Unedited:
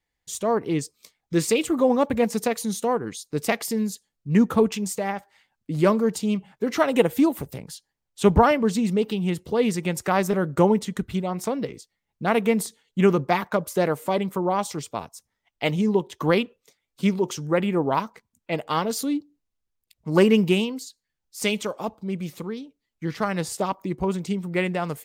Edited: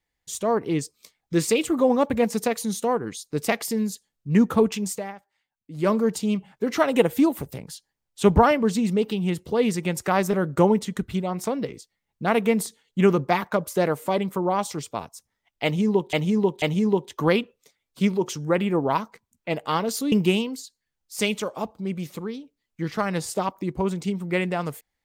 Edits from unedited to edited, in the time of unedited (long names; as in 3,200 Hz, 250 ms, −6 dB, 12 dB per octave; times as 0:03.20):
0:04.92–0:05.94: duck −15 dB, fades 0.34 s quadratic
0:15.64–0:16.13: repeat, 3 plays
0:19.14–0:20.35: remove